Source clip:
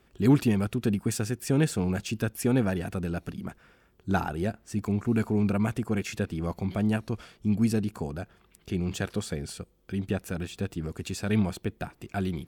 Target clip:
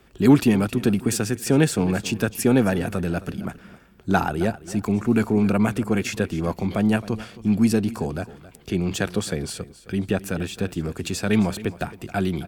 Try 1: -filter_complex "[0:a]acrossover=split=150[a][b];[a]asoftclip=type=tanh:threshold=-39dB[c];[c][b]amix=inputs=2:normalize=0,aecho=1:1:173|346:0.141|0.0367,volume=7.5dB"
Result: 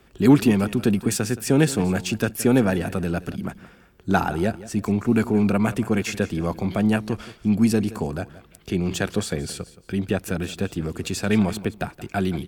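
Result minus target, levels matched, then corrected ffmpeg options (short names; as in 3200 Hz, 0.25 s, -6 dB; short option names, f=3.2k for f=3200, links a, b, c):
echo 94 ms early
-filter_complex "[0:a]acrossover=split=150[a][b];[a]asoftclip=type=tanh:threshold=-39dB[c];[c][b]amix=inputs=2:normalize=0,aecho=1:1:267|534:0.141|0.0367,volume=7.5dB"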